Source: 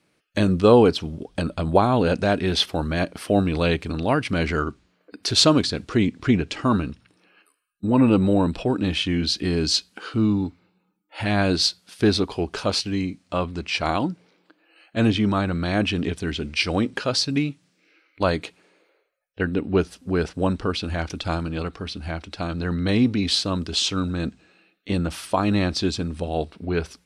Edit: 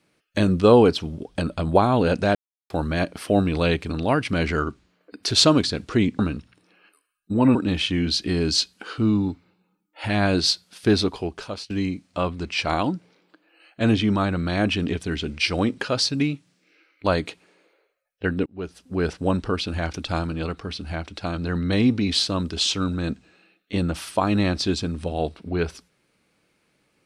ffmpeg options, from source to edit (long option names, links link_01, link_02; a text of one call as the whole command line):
ffmpeg -i in.wav -filter_complex "[0:a]asplit=7[link_01][link_02][link_03][link_04][link_05][link_06][link_07];[link_01]atrim=end=2.35,asetpts=PTS-STARTPTS,afade=type=out:start_time=2.346:duration=0.004:curve=hsin[link_08];[link_02]atrim=start=2.35:end=2.7,asetpts=PTS-STARTPTS,volume=0[link_09];[link_03]atrim=start=2.7:end=6.192,asetpts=PTS-STARTPTS,afade=type=in:duration=0.004:curve=hsin[link_10];[link_04]atrim=start=6.718:end=8.082[link_11];[link_05]atrim=start=8.708:end=12.86,asetpts=PTS-STARTPTS,afade=type=out:start_time=3.492:duration=0.66:silence=0.11885[link_12];[link_06]atrim=start=12.86:end=19.62,asetpts=PTS-STARTPTS,afade=type=in:duration=0.004:curve=hsin:silence=0.11885,afade=type=out:start_time=6.756:duration=0.004:curve=hsin[link_13];[link_07]atrim=start=19.62,asetpts=PTS-STARTPTS,afade=type=in:duration=0.63[link_14];[link_08][link_09][link_10]concat=n=3:v=0:a=1[link_15];[link_15][link_11]acrossfade=duration=0.004:curve1=hsin:curve2=hsin[link_16];[link_12][link_13][link_14]concat=n=3:v=0:a=1[link_17];[link_16][link_17]acrossfade=duration=0.004:curve1=hsin:curve2=hsin" out.wav